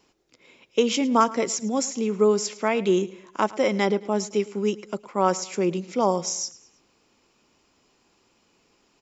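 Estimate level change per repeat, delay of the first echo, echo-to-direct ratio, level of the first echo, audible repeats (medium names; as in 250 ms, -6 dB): -7.5 dB, 108 ms, -18.5 dB, -19.5 dB, 3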